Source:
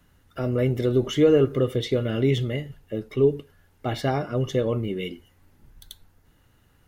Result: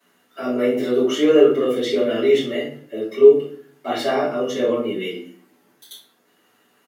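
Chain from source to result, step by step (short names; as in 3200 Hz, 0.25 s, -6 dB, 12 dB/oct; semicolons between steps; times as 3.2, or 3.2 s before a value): Bessel high-pass 330 Hz, order 6; doubler 12 ms -11 dB; shoebox room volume 57 m³, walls mixed, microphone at 2.9 m; gain -6.5 dB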